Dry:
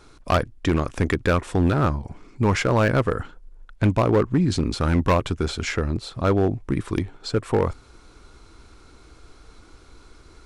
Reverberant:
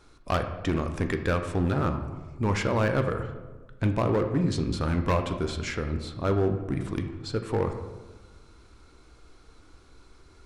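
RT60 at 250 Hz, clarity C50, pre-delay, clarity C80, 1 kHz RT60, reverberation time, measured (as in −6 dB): 1.6 s, 8.5 dB, 9 ms, 10.5 dB, 1.2 s, 1.3 s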